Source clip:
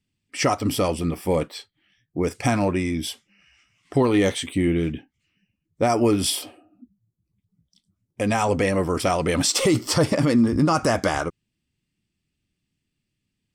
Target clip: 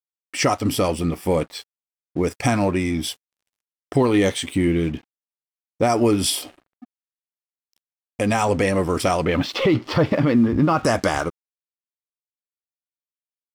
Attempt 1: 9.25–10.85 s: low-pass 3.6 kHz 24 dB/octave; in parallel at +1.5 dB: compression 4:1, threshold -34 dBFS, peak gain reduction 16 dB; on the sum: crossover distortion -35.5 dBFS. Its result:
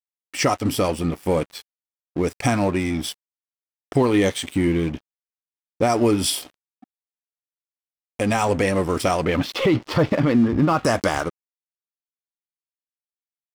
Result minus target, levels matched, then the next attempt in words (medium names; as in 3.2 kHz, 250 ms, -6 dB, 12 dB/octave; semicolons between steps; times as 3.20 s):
crossover distortion: distortion +7 dB
9.25–10.85 s: low-pass 3.6 kHz 24 dB/octave; in parallel at +1.5 dB: compression 4:1, threshold -34 dBFS, peak gain reduction 16 dB; on the sum: crossover distortion -43.5 dBFS